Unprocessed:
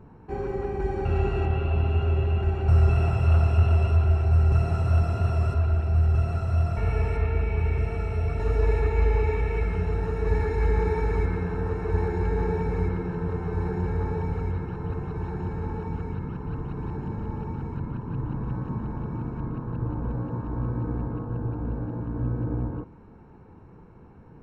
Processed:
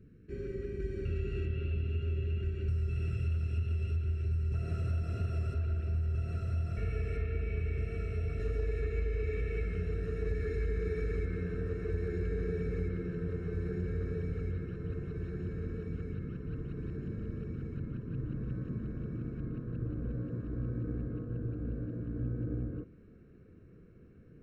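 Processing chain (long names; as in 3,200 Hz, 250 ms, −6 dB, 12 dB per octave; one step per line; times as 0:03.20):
Butterworth band-reject 870 Hz, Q 0.72
downward compressor, threshold −22 dBFS, peak gain reduction 8 dB
parametric band 820 Hz −4.5 dB 0.94 octaves, from 0:04.54 +13 dB
level −7 dB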